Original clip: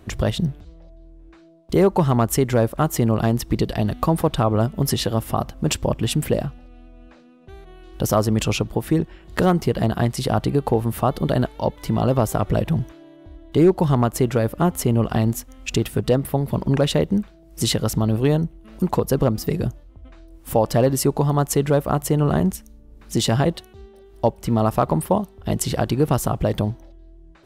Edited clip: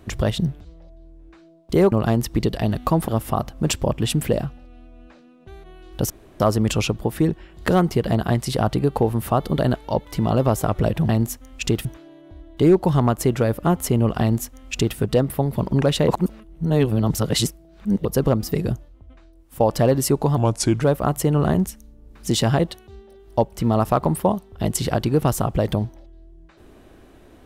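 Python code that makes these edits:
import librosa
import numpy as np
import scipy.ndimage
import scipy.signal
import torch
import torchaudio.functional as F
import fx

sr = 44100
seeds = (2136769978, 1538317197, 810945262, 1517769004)

y = fx.edit(x, sr, fx.cut(start_s=1.92, length_s=1.16),
    fx.cut(start_s=4.24, length_s=0.85),
    fx.insert_room_tone(at_s=8.11, length_s=0.3),
    fx.duplicate(start_s=15.16, length_s=0.76, to_s=12.8),
    fx.reverse_span(start_s=17.03, length_s=1.97),
    fx.fade_out_to(start_s=19.69, length_s=0.86, floor_db=-11.0),
    fx.speed_span(start_s=21.32, length_s=0.36, speed=0.8), tone=tone)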